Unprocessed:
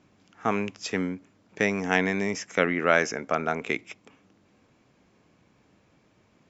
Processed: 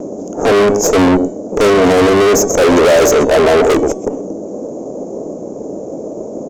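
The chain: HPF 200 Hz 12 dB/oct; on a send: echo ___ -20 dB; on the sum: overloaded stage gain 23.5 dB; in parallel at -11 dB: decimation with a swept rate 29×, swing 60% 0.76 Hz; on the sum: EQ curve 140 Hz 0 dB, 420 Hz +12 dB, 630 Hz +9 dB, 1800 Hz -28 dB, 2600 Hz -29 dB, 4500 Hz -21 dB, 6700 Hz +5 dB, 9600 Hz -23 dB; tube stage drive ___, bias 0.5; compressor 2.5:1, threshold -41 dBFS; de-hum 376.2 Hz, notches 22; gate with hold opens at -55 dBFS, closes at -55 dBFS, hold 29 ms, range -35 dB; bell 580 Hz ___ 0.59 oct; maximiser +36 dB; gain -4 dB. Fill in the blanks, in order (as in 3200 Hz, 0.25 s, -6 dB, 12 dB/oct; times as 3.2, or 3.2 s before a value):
0.127 s, 36 dB, +4 dB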